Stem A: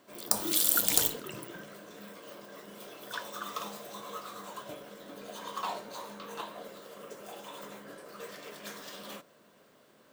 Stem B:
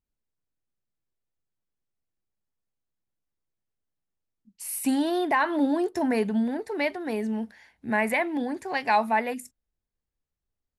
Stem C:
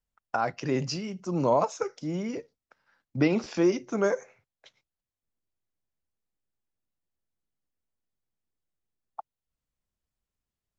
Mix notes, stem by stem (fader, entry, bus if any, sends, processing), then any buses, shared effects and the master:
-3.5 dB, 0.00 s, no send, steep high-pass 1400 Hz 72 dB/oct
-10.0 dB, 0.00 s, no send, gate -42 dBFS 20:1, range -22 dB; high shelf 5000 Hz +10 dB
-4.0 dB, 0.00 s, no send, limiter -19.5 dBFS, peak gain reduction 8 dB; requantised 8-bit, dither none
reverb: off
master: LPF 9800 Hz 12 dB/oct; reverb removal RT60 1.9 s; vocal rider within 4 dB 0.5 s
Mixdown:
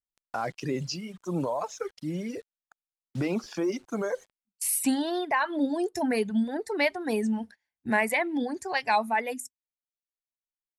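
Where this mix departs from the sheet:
stem A: muted; stem B -10.0 dB -> +1.0 dB

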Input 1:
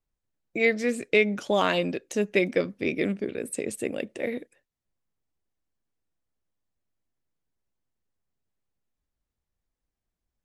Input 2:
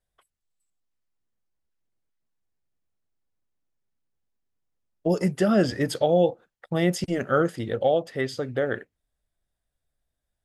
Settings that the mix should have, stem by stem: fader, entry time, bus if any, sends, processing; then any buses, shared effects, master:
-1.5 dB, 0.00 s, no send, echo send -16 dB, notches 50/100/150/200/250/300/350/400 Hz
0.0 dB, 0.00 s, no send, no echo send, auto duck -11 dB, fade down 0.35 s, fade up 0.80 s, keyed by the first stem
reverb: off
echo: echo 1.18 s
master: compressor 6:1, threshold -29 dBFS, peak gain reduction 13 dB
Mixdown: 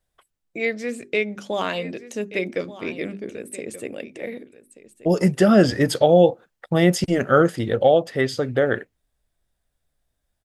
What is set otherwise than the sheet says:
stem 2 0.0 dB -> +6.0 dB; master: missing compressor 6:1, threshold -29 dBFS, peak gain reduction 13 dB

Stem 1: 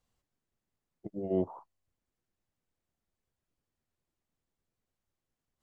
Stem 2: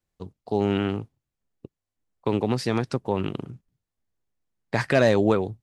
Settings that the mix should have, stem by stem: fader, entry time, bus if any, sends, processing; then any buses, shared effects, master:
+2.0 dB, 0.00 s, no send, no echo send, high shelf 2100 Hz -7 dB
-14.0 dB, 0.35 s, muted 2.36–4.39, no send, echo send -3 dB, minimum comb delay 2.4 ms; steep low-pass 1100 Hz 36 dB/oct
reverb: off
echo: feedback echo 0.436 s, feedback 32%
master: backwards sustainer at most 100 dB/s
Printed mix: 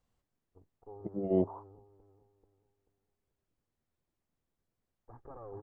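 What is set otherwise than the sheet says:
stem 2 -14.0 dB -> -22.0 dB; master: missing backwards sustainer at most 100 dB/s

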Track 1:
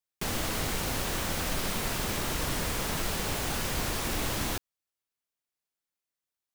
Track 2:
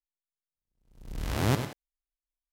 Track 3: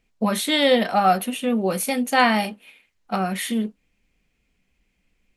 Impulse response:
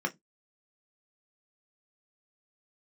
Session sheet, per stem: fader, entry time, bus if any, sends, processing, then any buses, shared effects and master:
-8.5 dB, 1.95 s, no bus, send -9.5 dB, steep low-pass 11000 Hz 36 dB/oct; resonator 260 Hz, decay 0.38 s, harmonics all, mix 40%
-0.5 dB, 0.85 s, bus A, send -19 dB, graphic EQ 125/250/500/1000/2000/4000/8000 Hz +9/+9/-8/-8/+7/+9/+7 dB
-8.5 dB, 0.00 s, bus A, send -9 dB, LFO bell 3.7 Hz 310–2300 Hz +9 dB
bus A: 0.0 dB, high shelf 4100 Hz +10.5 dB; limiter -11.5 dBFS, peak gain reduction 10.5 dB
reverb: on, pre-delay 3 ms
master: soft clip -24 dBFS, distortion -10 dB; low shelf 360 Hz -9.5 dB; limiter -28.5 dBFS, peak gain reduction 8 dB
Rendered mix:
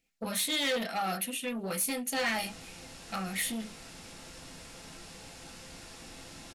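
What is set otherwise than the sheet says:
stem 2: muted; master: missing limiter -28.5 dBFS, peak gain reduction 8 dB

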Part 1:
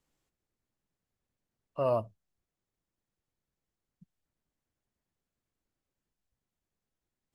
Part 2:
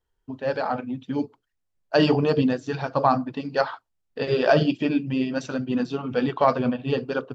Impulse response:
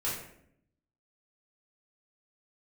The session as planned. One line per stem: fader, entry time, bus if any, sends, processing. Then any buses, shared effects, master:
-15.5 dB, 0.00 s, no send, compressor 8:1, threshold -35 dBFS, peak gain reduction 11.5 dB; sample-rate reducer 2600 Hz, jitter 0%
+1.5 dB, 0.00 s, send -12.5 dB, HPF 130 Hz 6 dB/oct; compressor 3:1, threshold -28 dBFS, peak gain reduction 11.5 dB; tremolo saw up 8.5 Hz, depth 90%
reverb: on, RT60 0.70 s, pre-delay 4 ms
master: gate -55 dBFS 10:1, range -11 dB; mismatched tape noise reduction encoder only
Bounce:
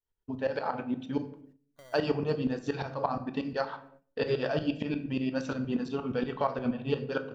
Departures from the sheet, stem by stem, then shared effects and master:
stem 2: missing HPF 130 Hz 6 dB/oct; master: missing mismatched tape noise reduction encoder only

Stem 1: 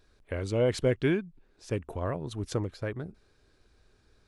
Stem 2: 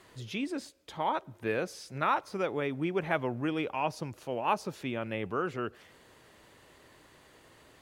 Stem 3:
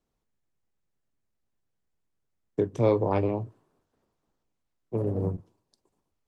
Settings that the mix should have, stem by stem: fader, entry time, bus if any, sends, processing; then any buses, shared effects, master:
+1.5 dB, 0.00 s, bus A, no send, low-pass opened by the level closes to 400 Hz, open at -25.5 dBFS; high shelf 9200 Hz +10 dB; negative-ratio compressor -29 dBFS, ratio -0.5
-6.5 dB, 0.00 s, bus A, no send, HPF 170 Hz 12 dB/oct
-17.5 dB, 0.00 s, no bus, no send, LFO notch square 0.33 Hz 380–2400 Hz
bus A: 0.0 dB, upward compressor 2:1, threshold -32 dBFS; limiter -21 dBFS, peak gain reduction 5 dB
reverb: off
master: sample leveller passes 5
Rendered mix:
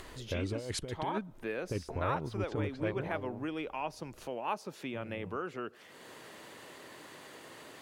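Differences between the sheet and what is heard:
stem 1 +1.5 dB -> -5.0 dB; master: missing sample leveller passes 5

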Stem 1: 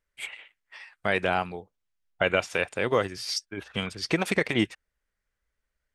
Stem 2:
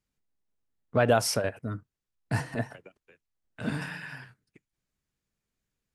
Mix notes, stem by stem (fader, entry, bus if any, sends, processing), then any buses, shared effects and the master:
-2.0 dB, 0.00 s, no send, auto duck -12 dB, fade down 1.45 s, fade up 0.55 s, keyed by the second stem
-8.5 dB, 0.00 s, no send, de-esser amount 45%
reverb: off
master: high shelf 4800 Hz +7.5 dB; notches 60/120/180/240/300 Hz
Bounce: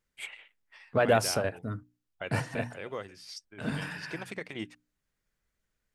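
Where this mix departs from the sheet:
stem 2 -8.5 dB -> -1.0 dB; master: missing high shelf 4800 Hz +7.5 dB

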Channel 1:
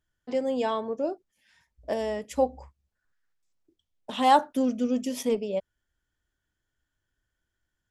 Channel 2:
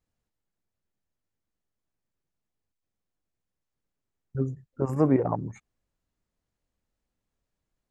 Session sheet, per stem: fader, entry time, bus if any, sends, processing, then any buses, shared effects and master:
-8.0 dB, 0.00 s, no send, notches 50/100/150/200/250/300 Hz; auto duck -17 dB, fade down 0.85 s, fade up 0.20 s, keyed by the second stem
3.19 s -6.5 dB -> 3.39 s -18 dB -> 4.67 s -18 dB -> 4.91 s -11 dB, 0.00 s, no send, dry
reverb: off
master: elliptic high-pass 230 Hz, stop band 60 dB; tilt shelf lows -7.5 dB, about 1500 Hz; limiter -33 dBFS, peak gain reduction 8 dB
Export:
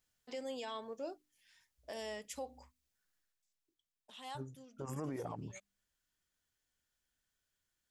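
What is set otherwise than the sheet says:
stem 2 -6.5 dB -> +0.5 dB; master: missing elliptic high-pass 230 Hz, stop band 60 dB

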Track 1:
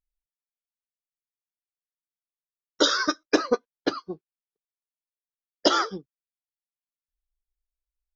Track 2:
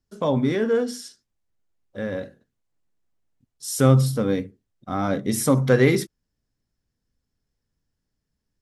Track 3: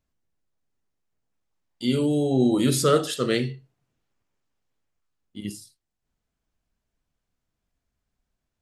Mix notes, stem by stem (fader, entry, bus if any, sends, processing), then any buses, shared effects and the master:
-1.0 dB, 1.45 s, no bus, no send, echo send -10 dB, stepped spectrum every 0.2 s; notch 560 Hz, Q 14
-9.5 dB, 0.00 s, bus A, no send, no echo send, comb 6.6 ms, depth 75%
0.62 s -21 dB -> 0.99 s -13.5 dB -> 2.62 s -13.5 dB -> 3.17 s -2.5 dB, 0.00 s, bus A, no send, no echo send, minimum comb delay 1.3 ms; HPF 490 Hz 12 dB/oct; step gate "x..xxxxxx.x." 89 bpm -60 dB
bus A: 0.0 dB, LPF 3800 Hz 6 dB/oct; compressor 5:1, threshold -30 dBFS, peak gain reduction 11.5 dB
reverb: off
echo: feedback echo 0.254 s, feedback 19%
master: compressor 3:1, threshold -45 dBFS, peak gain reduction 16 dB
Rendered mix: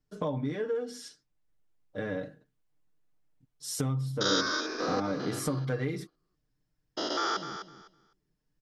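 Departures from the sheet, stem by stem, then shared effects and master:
stem 2 -9.5 dB -> -2.0 dB; stem 3: muted; master: missing compressor 3:1, threshold -45 dBFS, peak gain reduction 16 dB

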